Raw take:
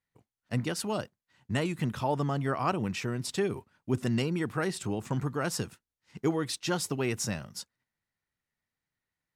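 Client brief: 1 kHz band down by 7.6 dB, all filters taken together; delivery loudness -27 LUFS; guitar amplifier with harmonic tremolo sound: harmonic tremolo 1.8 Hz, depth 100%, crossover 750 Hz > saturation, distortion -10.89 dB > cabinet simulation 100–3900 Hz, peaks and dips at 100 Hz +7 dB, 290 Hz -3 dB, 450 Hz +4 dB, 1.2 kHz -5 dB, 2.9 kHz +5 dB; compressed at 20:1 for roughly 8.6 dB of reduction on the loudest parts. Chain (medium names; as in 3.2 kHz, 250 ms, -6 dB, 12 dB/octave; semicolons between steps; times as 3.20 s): peaking EQ 1 kHz -8.5 dB; compression 20:1, threshold -32 dBFS; harmonic tremolo 1.8 Hz, depth 100%, crossover 750 Hz; saturation -37 dBFS; cabinet simulation 100–3900 Hz, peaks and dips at 100 Hz +7 dB, 290 Hz -3 dB, 450 Hz +4 dB, 1.2 kHz -5 dB, 2.9 kHz +5 dB; trim +19 dB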